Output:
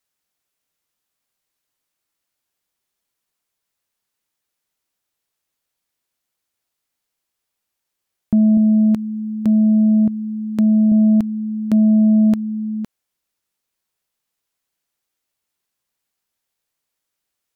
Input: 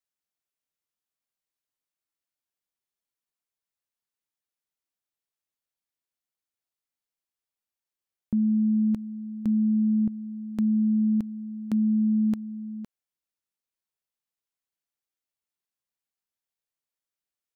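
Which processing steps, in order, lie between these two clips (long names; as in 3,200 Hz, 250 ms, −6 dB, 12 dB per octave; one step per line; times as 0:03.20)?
0:08.57–0:10.92: high-pass filter 130 Hz 6 dB per octave
sine wavefolder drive 3 dB, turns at −14.5 dBFS
level +5 dB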